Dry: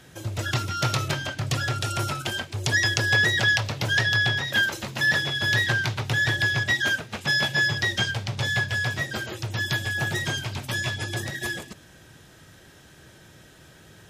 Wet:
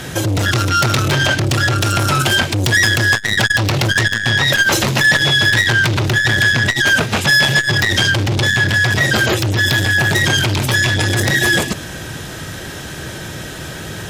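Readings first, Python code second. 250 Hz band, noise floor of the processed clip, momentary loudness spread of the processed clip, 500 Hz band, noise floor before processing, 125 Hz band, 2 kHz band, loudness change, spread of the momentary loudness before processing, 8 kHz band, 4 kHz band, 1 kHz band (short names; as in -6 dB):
+14.0 dB, -29 dBFS, 16 LU, +13.0 dB, -51 dBFS, +11.5 dB, +10.0 dB, +10.5 dB, 9 LU, +13.0 dB, +11.0 dB, +12.0 dB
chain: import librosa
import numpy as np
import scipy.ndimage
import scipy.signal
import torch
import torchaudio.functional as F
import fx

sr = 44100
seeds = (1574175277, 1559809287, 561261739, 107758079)

p1 = fx.over_compress(x, sr, threshold_db=-33.0, ratio=-1.0)
p2 = x + F.gain(torch.from_numpy(p1), -1.0).numpy()
p3 = fx.fold_sine(p2, sr, drive_db=15, ceiling_db=-1.5)
p4 = fx.transformer_sat(p3, sr, knee_hz=270.0)
y = F.gain(torch.from_numpy(p4), -5.5).numpy()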